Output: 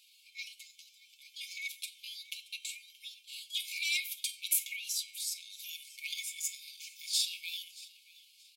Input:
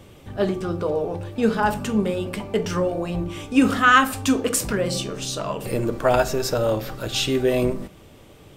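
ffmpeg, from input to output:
-af "asoftclip=type=hard:threshold=0.355,afftfilt=real='re*between(b*sr/4096,1600,12000)':imag='im*between(b*sr/4096,1600,12000)':win_size=4096:overlap=0.75,asetrate=58866,aresample=44100,atempo=0.749154,aecho=1:1:5.4:0.49,aecho=1:1:627|1254:0.0944|0.0227,adynamicequalizer=threshold=0.0112:dfrequency=5800:dqfactor=1.4:tfrequency=5800:tqfactor=1.4:attack=5:release=100:ratio=0.375:range=2:mode=cutabove:tftype=bell,volume=0.501"

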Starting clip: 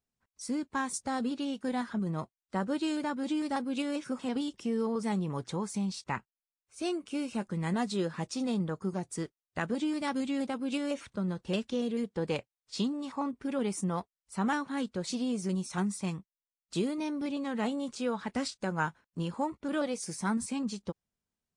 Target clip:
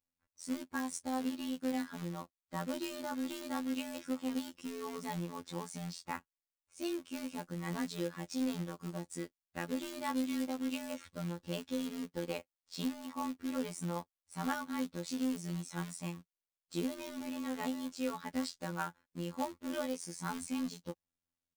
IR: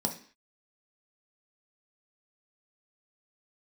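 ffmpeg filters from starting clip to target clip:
-af "aecho=1:1:3.6:0.45,acrusher=bits=3:mode=log:mix=0:aa=0.000001,afftfilt=real='hypot(re,im)*cos(PI*b)':imag='0':win_size=2048:overlap=0.75,volume=0.668"

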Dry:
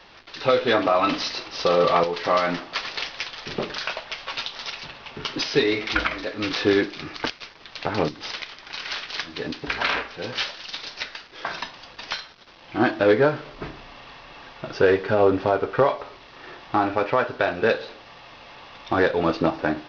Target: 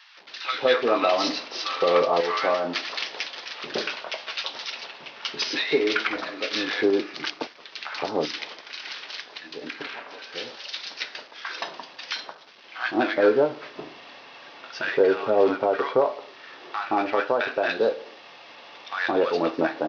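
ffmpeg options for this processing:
-filter_complex "[0:a]highpass=290,asettb=1/sr,asplit=3[s0][s1][s2];[s0]atrim=end=8.554[s3];[s1]atrim=start=8.55:end=10.59,asetpts=PTS-STARTPTS,afade=t=in:d=0.004:c=qsin,afade=t=out:st=2.036:d=0.004:c=qsin,acompressor=threshold=0.0251:ratio=6[s4];[s2]atrim=start=10.586[s5];[s3][s4]acrossfade=d=0.004:c1=hsin:c2=qsin[s6];[s6][s5]acrossfade=d=0.004:c1=qsin:c2=hsin,acrossover=split=1100[s7][s8];[s7]adelay=170[s9];[s9][s8]amix=inputs=2:normalize=0"

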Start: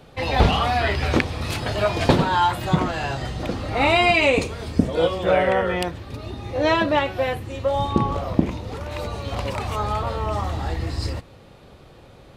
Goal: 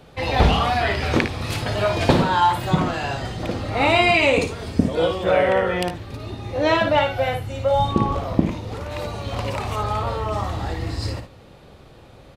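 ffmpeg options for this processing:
-filter_complex "[0:a]asettb=1/sr,asplit=3[s0][s1][s2];[s0]atrim=end=6.804[s3];[s1]atrim=start=6.8:end=7.89,asetpts=PTS-STARTPTS,afade=t=in:d=0.004:c=qsin,afade=t=out:st=1.086:d=0.004:c=qsin,aecho=1:1:1.4:0.49,atrim=end_sample=48069[s4];[s2]atrim=start=7.886[s5];[s3][s4]acrossfade=d=0.004:c1=hsin:c2=qsin[s6];[s6][s5]acrossfade=d=0.004:c1=qsin:c2=hsin,asplit=2[s7][s8];[s8]aecho=0:1:56|74:0.398|0.188[s9];[s7][s9]amix=inputs=2:normalize=0"

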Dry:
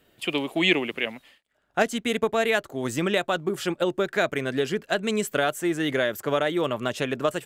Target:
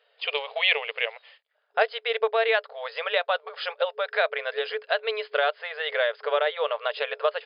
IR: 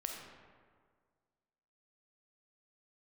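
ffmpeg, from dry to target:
-filter_complex "[0:a]agate=range=0.501:threshold=0.00158:ratio=16:detection=peak,afftfilt=real='re*between(b*sr/4096,430,5100)':imag='im*between(b*sr/4096,430,5100)':win_size=4096:overlap=0.75,asplit=2[s0][s1];[s1]acompressor=threshold=0.00794:ratio=6,volume=0.794[s2];[s0][s2]amix=inputs=2:normalize=0"

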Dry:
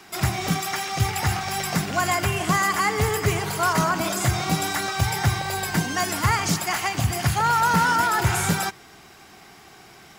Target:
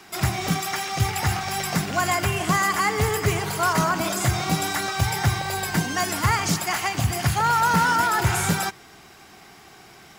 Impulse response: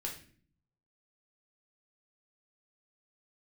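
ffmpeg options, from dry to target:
-af "acrusher=bits=8:mode=log:mix=0:aa=0.000001"

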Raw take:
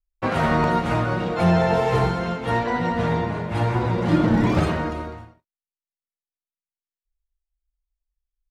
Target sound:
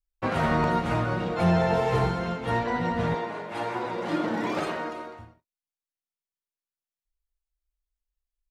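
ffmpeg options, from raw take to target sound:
-filter_complex "[0:a]asettb=1/sr,asplit=3[s0][s1][s2];[s0]atrim=end=3.144[s3];[s1]atrim=start=3.14:end=5.19,asetpts=PTS-STARTPTS,afade=t=in:d=0.004:c=qsin,afade=t=out:st=2.046:d=0.004:c=qsin,highpass=350[s4];[s2]atrim=start=5.186[s5];[s3][s4]acrossfade=d=0.004:c1=hsin:c2=qsin[s6];[s6][s5]acrossfade=d=0.004:c1=qsin:c2=hsin,volume=0.631"

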